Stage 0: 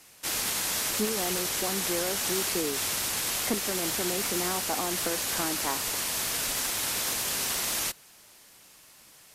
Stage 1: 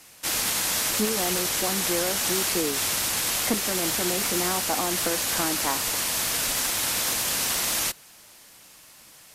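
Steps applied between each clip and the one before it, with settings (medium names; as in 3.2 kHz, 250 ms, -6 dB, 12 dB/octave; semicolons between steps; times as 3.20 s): band-stop 400 Hz, Q 12; trim +4 dB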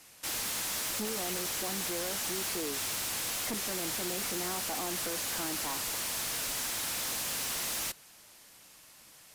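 hard clipper -26.5 dBFS, distortion -9 dB; trim -5.5 dB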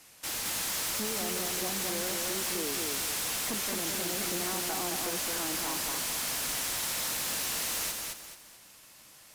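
bit-crushed delay 216 ms, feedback 35%, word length 11-bit, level -3 dB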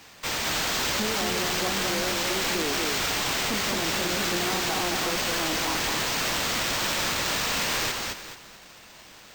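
sample-and-hold 4×; trim +6 dB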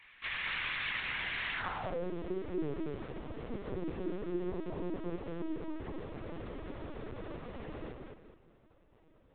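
band-pass sweep 2.1 kHz -> 330 Hz, 1.50–2.09 s; LPC vocoder at 8 kHz pitch kept; trim -2 dB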